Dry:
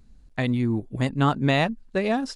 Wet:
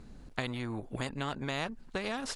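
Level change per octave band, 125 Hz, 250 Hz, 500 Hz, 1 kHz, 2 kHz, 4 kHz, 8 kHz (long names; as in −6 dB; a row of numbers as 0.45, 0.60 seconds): −14.5, −14.0, −12.0, −11.5, −8.5, −6.5, 0.0 decibels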